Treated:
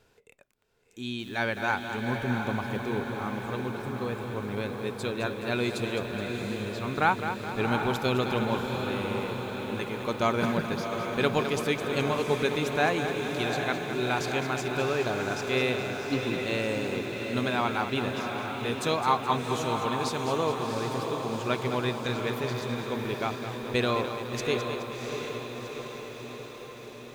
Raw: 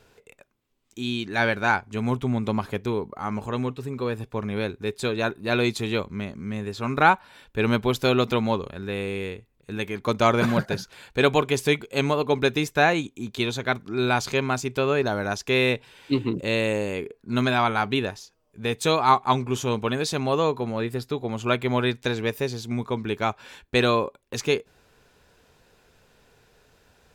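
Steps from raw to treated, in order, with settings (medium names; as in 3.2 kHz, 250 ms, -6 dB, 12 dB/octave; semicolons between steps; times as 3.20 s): echo that smears into a reverb 729 ms, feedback 65%, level -5.5 dB; bit-crushed delay 211 ms, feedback 55%, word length 7-bit, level -9 dB; trim -6.5 dB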